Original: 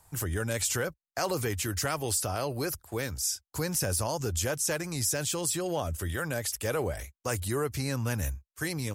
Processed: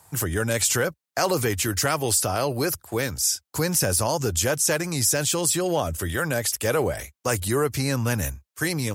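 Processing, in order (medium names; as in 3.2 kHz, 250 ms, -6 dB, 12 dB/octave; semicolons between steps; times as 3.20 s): high-pass 100 Hz; trim +7.5 dB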